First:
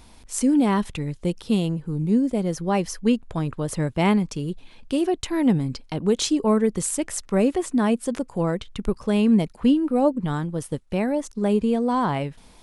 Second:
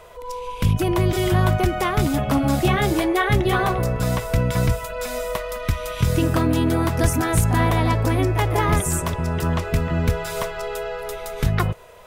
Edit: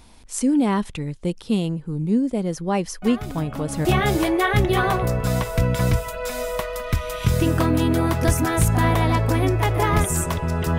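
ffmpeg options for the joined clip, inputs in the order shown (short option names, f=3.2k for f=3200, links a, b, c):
-filter_complex "[1:a]asplit=2[a][b];[0:a]apad=whole_dur=10.78,atrim=end=10.78,atrim=end=3.852[c];[b]atrim=start=2.608:end=9.54[d];[a]atrim=start=1.78:end=2.61,asetpts=PTS-STARTPTS,volume=-12.5dB,afade=t=in:d=0.004:c=hsin,afade=t=out:st=0.826:d=0.004:c=hsin,adelay=3020[e];[c][d]acrossfade=d=0.004:c1=hsin:c2=hsin[f];[f][e]amix=inputs=2:normalize=0"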